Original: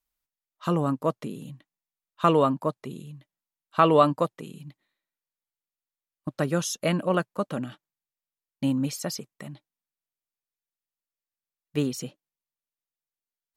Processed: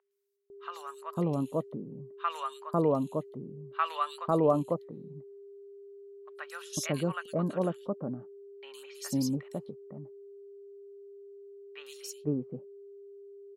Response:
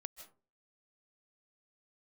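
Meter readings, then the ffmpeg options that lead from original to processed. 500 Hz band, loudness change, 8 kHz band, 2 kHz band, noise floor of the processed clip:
-5.0 dB, -7.0 dB, -5.0 dB, -6.5 dB, -50 dBFS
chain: -filter_complex "[0:a]aeval=exprs='val(0)+0.00794*sin(2*PI*400*n/s)':c=same,acrossover=split=1000|3200[a][b][c];[c]adelay=110[d];[a]adelay=500[e];[e][b][d]amix=inputs=3:normalize=0,volume=-4.5dB"

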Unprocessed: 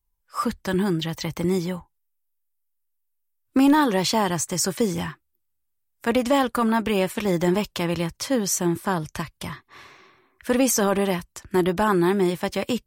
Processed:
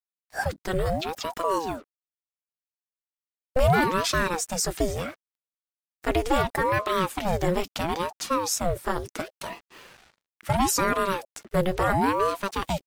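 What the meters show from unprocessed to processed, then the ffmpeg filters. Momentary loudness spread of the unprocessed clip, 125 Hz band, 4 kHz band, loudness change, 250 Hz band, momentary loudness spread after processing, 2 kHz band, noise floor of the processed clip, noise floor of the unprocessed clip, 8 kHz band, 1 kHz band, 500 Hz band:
12 LU, -2.0 dB, -2.5 dB, -3.0 dB, -8.5 dB, 12 LU, 0.0 dB, under -85 dBFS, -74 dBFS, -3.5 dB, +1.0 dB, -2.5 dB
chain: -af "acrusher=bits=7:mix=0:aa=0.5,aeval=exprs='val(0)*sin(2*PI*510*n/s+510*0.65/0.73*sin(2*PI*0.73*n/s))':c=same"

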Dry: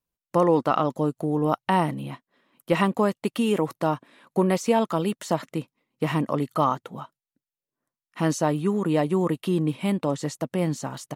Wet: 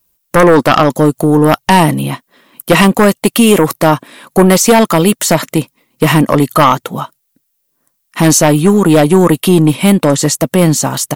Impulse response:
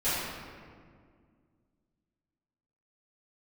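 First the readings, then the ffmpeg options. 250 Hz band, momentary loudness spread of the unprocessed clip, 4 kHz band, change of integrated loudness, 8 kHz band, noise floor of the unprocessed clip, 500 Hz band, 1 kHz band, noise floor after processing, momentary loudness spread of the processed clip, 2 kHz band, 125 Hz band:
+15.0 dB, 10 LU, +19.5 dB, +15.0 dB, +24.0 dB, under -85 dBFS, +14.0 dB, +13.5 dB, -65 dBFS, 10 LU, +18.5 dB, +15.5 dB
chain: -af "aemphasis=mode=production:type=50kf,aeval=exprs='0.473*sin(PI/2*2.51*val(0)/0.473)':c=same,volume=5dB"

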